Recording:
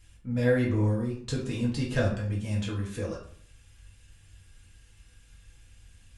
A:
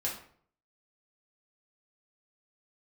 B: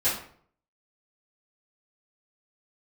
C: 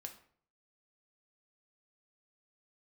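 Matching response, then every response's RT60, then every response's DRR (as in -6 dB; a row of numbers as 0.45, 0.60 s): A; 0.55, 0.55, 0.55 s; -4.5, -13.5, 4.0 dB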